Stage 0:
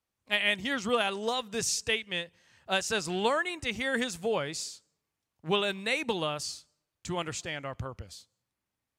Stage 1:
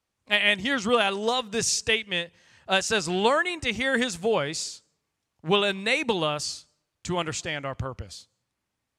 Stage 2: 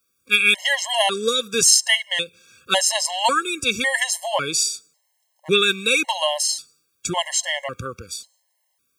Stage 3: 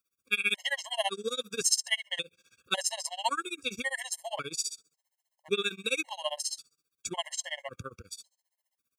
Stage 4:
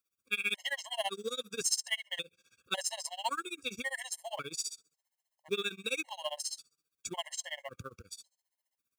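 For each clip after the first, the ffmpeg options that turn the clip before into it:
ffmpeg -i in.wav -af "lowpass=10000,volume=5.5dB" out.wav
ffmpeg -i in.wav -af "aemphasis=mode=production:type=bsi,afftfilt=real='re*gt(sin(2*PI*0.91*pts/sr)*(1-2*mod(floor(b*sr/1024/550),2)),0)':imag='im*gt(sin(2*PI*0.91*pts/sr)*(1-2*mod(floor(b*sr/1024/550),2)),0)':win_size=1024:overlap=0.75,volume=7dB" out.wav
ffmpeg -i in.wav -af "tremolo=f=15:d=0.96,volume=-8.5dB" out.wav
ffmpeg -i in.wav -filter_complex "[0:a]asplit=2[link_01][link_02];[link_02]asoftclip=type=hard:threshold=-27.5dB,volume=-10dB[link_03];[link_01][link_03]amix=inputs=2:normalize=0,acrusher=bits=6:mode=log:mix=0:aa=0.000001,volume=-6dB" out.wav

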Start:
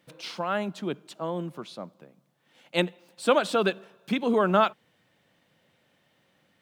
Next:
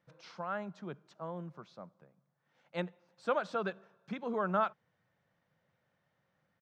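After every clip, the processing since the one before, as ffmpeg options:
ffmpeg -i in.wav -af "firequalizer=gain_entry='entry(150,0);entry(270,-10);entry(510,-4);entry(1400,-1);entry(2900,-13);entry(5900,-8);entry(9500,-26)':delay=0.05:min_phase=1,volume=-6.5dB" out.wav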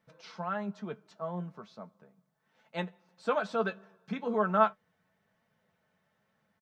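ffmpeg -i in.wav -af "aecho=1:1:4.6:0.48,flanger=delay=8.7:depth=2.7:regen=51:speed=1.1:shape=triangular,volume=6.5dB" out.wav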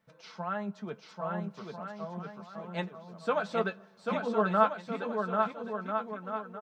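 ffmpeg -i in.wav -af "aecho=1:1:790|1343|1730|2001|2191:0.631|0.398|0.251|0.158|0.1" out.wav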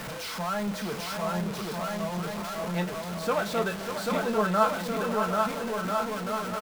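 ffmpeg -i in.wav -filter_complex "[0:a]aeval=exprs='val(0)+0.5*0.0266*sgn(val(0))':channel_layout=same,asplit=2[link_01][link_02];[link_02]adelay=34,volume=-12.5dB[link_03];[link_01][link_03]amix=inputs=2:normalize=0,aecho=1:1:593:0.376" out.wav

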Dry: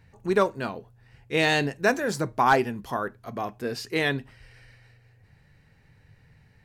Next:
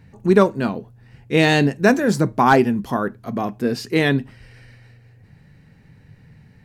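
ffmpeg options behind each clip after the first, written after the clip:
ffmpeg -i in.wav -af "equalizer=frequency=210:width_type=o:width=1.6:gain=10,volume=4dB" out.wav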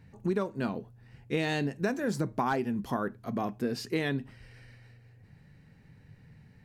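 ffmpeg -i in.wav -af "acompressor=threshold=-19dB:ratio=6,volume=-7dB" out.wav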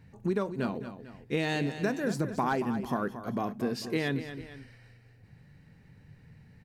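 ffmpeg -i in.wav -af "aecho=1:1:228|445:0.282|0.133" out.wav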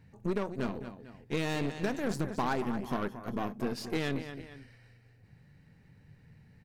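ffmpeg -i in.wav -af "aeval=exprs='0.158*(cos(1*acos(clip(val(0)/0.158,-1,1)))-cos(1*PI/2))+0.0158*(cos(8*acos(clip(val(0)/0.158,-1,1)))-cos(8*PI/2))':channel_layout=same,volume=-3dB" out.wav

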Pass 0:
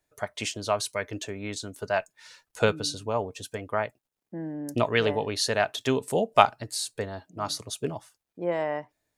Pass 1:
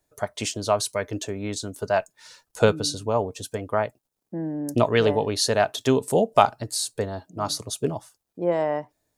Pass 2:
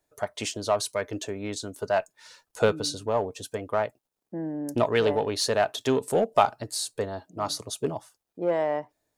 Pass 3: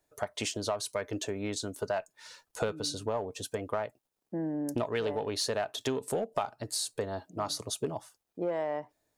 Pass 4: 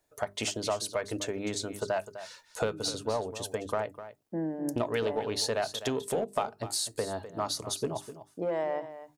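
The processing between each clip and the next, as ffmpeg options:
ffmpeg -i in.wav -af "equalizer=frequency=2200:width_type=o:width=1.5:gain=-7,alimiter=level_in=6.5dB:limit=-1dB:release=50:level=0:latency=1,volume=-1dB" out.wav
ffmpeg -i in.wav -filter_complex "[0:a]asplit=2[link_01][link_02];[link_02]volume=20.5dB,asoftclip=hard,volume=-20.5dB,volume=-6dB[link_03];[link_01][link_03]amix=inputs=2:normalize=0,bass=frequency=250:gain=-5,treble=frequency=4000:gain=-3,volume=-4.5dB" out.wav
ffmpeg -i in.wav -af "acompressor=threshold=-29dB:ratio=5" out.wav
ffmpeg -i in.wav -af "bandreject=frequency=50:width_type=h:width=6,bandreject=frequency=100:width_type=h:width=6,bandreject=frequency=150:width_type=h:width=6,bandreject=frequency=200:width_type=h:width=6,bandreject=frequency=250:width_type=h:width=6,bandreject=frequency=300:width_type=h:width=6,bandreject=frequency=350:width_type=h:width=6,bandreject=frequency=400:width_type=h:width=6,aecho=1:1:253:0.224,volume=1.5dB" out.wav

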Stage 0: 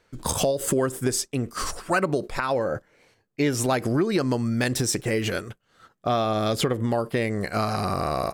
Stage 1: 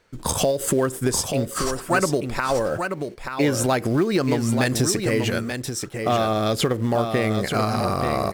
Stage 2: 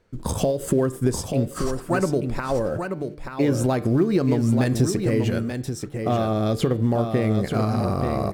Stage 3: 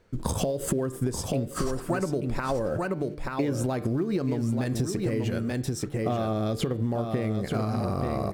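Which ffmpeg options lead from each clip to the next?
ffmpeg -i in.wav -filter_complex "[0:a]asplit=2[link_01][link_02];[link_02]acrusher=bits=3:mode=log:mix=0:aa=0.000001,volume=-11dB[link_03];[link_01][link_03]amix=inputs=2:normalize=0,aecho=1:1:883:0.473" out.wav
ffmpeg -i in.wav -af "tiltshelf=frequency=640:gain=6,bandreject=frequency=149.1:width_type=h:width=4,bandreject=frequency=298.2:width_type=h:width=4,bandreject=frequency=447.3:width_type=h:width=4,bandreject=frequency=596.4:width_type=h:width=4,bandreject=frequency=745.5:width_type=h:width=4,bandreject=frequency=894.6:width_type=h:width=4,bandreject=frequency=1043.7:width_type=h:width=4,bandreject=frequency=1192.8:width_type=h:width=4,bandreject=frequency=1341.9:width_type=h:width=4,bandreject=frequency=1491:width_type=h:width=4,bandreject=frequency=1640.1:width_type=h:width=4,bandreject=frequency=1789.2:width_type=h:width=4,bandreject=frequency=1938.3:width_type=h:width=4,bandreject=frequency=2087.4:width_type=h:width=4,bandreject=frequency=2236.5:width_type=h:width=4,bandreject=frequency=2385.6:width_type=h:width=4,bandreject=frequency=2534.7:width_type=h:width=4,bandreject=frequency=2683.8:width_type=h:width=4,bandreject=frequency=2832.9:width_type=h:width=4,bandreject=frequency=2982:width_type=h:width=4,bandreject=frequency=3131.1:width_type=h:width=4,bandreject=frequency=3280.2:width_type=h:width=4,bandreject=frequency=3429.3:width_type=h:width=4,bandreject=frequency=3578.4:width_type=h:width=4,bandreject=frequency=3727.5:width_type=h:width=4,bandreject=frequency=3876.6:width_type=h:width=4,bandreject=frequency=4025.7:width_type=h:width=4,bandreject=frequency=4174.8:width_type=h:width=4,bandreject=frequency=4323.9:width_type=h:width=4,bandreject=frequency=4473:width_type=h:width=4,bandreject=frequency=4622.1:width_type=h:width=4,bandreject=frequency=4771.2:width_type=h:width=4,volume=-2.5dB" out.wav
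ffmpeg -i in.wav -af "acompressor=threshold=-26dB:ratio=6,volume=2dB" out.wav

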